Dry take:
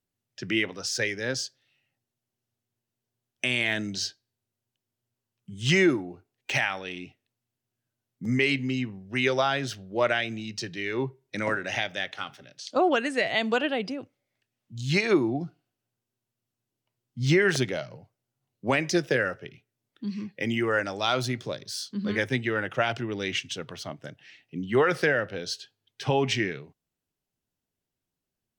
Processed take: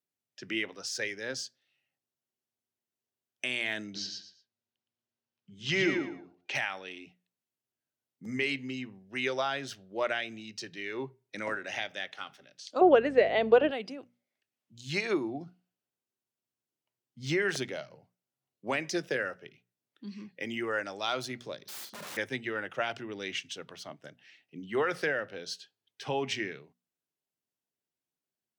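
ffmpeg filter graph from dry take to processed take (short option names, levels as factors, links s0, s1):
-filter_complex "[0:a]asettb=1/sr,asplit=3[s0][s1][s2];[s0]atrim=end=3.844[s3];[s1]atrim=start=3.84:end=6.55,asetpts=PTS-STARTPTS,afade=t=in:d=0.004:c=qsin,afade=t=out:st=2.706:d=0.004:c=qsin,lowpass=f=5900:w=0.5412,lowpass=f=5900:w=1.3066,aecho=1:1:115|230|345:0.631|0.158|0.0394,atrim=end_sample=119511[s4];[s2]atrim=start=6.546[s5];[s3][s4]acrossfade=d=0.004:c1=hsin:c2=qsin[s6];[s6][s5]acrossfade=d=0.004:c1=qsin:c2=hsin,asettb=1/sr,asplit=3[s7][s8][s9];[s7]atrim=end=12.814[s10];[s8]atrim=start=12.81:end=13.71,asetpts=PTS-STARTPTS,afade=t=in:d=0.004:c=qsin,afade=t=out:st=0.896:d=0.004:c=qsin,lowpass=3300,equalizer=f=470:t=o:w=1.4:g=14,aeval=exprs='val(0)+0.0251*(sin(2*PI*50*n/s)+sin(2*PI*2*50*n/s)/2+sin(2*PI*3*50*n/s)/3+sin(2*PI*4*50*n/s)/4+sin(2*PI*5*50*n/s)/5)':c=same[s11];[s9]atrim=start=13.706[s12];[s10][s11]acrossfade=d=0.004:c1=hsin:c2=qsin[s13];[s13][s12]acrossfade=d=0.004:c1=qsin:c2=hsin,asettb=1/sr,asplit=3[s14][s15][s16];[s14]atrim=end=21.634[s17];[s15]atrim=start=21.63:end=22.17,asetpts=PTS-STARTPTS,afade=t=in:d=0.004:c=qsin,afade=t=out:st=0.536:d=0.004:c=qsin,equalizer=f=2600:w=0.64:g=2.5,aeval=exprs='(mod(39.8*val(0)+1,2)-1)/39.8':c=same,asplit=2[s18][s19];[s19]adelay=45,volume=0.398[s20];[s18][s20]amix=inputs=2:normalize=0,atrim=end_sample=23814[s21];[s16]atrim=start=22.166[s22];[s17][s21]acrossfade=d=0.004:c1=hsin:c2=qsin[s23];[s23][s22]acrossfade=d=0.004:c1=qsin:c2=hsin,highpass=94,lowshelf=f=140:g=-11.5,bandreject=f=60:t=h:w=6,bandreject=f=120:t=h:w=6,bandreject=f=180:t=h:w=6,bandreject=f=240:t=h:w=6,volume=0.501"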